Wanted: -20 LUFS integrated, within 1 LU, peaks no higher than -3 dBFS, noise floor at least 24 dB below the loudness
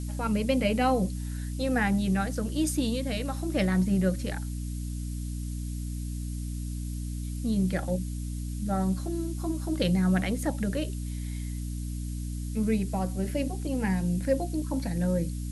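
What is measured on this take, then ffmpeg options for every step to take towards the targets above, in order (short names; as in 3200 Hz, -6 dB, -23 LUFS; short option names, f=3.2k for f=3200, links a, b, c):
hum 60 Hz; harmonics up to 300 Hz; hum level -31 dBFS; noise floor -34 dBFS; noise floor target -54 dBFS; loudness -29.5 LUFS; peak -13.5 dBFS; loudness target -20.0 LUFS
-> -af "bandreject=f=60:t=h:w=6,bandreject=f=120:t=h:w=6,bandreject=f=180:t=h:w=6,bandreject=f=240:t=h:w=6,bandreject=f=300:t=h:w=6"
-af "afftdn=nr=20:nf=-34"
-af "volume=9.5dB"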